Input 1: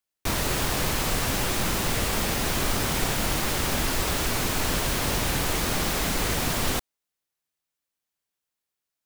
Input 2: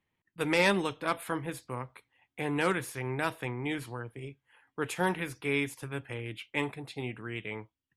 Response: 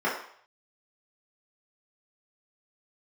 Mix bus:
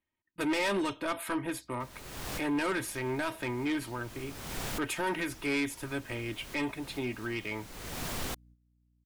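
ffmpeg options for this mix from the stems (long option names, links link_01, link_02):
-filter_complex "[0:a]aeval=exprs='val(0)+0.00355*(sin(2*PI*60*n/s)+sin(2*PI*2*60*n/s)/2+sin(2*PI*3*60*n/s)/3+sin(2*PI*4*60*n/s)/4+sin(2*PI*5*60*n/s)/5)':channel_layout=same,adelay=1550,volume=-9dB[link_01];[1:a]aecho=1:1:3.2:0.57,alimiter=limit=-19dB:level=0:latency=1:release=69,volume=3dB,asplit=2[link_02][link_03];[link_03]apad=whole_len=467571[link_04];[link_01][link_04]sidechaincompress=threshold=-47dB:ratio=8:attack=7.3:release=390[link_05];[link_05][link_02]amix=inputs=2:normalize=0,agate=range=-11dB:threshold=-56dB:ratio=16:detection=peak,asoftclip=type=tanh:threshold=-25.5dB"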